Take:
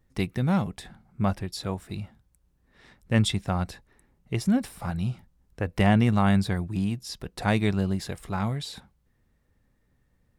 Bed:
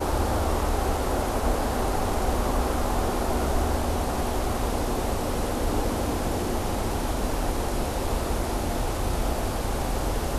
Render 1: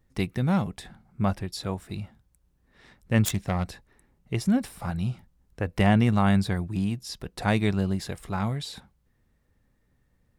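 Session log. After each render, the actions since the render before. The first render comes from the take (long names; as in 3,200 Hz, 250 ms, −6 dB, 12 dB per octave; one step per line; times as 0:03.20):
0:03.25–0:03.65: phase distortion by the signal itself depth 0.21 ms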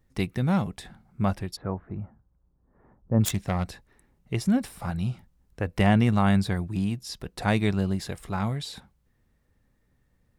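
0:01.55–0:03.20: low-pass filter 1,700 Hz → 1,000 Hz 24 dB per octave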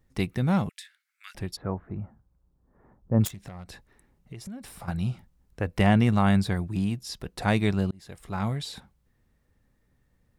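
0:00.69–0:01.35: Butterworth high-pass 1,700 Hz
0:03.27–0:04.88: downward compressor 8 to 1, threshold −37 dBFS
0:07.91–0:08.48: fade in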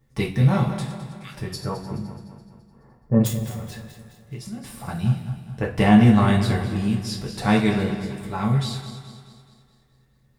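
feedback delay that plays each chunk backwards 106 ms, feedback 71%, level −10.5 dB
coupled-rooms reverb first 0.27 s, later 1.7 s, DRR −2 dB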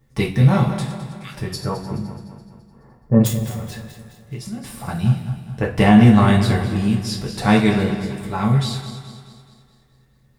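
level +4 dB
brickwall limiter −1 dBFS, peak gain reduction 2.5 dB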